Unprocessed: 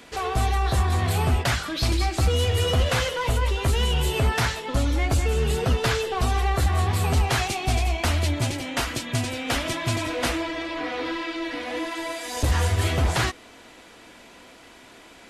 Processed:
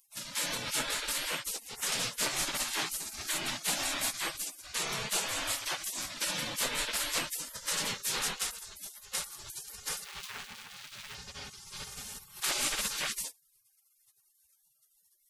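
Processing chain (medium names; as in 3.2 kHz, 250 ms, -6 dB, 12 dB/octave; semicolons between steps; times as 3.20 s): 10.04–11.15 s: median filter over 41 samples; spectral gate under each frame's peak -30 dB weak; bass shelf 180 Hz +8 dB; trim +4.5 dB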